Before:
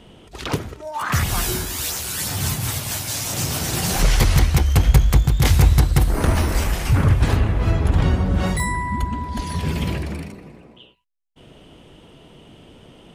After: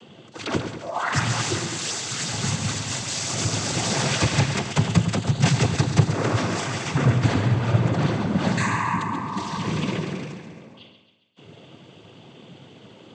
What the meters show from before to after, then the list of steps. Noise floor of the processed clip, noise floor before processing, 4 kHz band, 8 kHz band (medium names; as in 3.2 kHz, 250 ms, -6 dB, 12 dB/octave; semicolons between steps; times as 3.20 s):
-49 dBFS, -48 dBFS, 0.0 dB, -2.0 dB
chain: noise-vocoded speech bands 16; two-band feedback delay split 1.5 kHz, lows 103 ms, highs 136 ms, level -8.5 dB